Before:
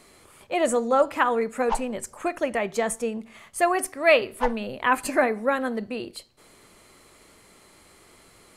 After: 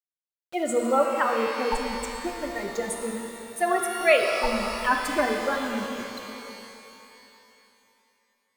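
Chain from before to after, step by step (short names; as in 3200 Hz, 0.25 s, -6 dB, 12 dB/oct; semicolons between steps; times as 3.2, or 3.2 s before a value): per-bin expansion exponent 2; sample gate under -41 dBFS; shimmer reverb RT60 3 s, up +12 st, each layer -8 dB, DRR 2 dB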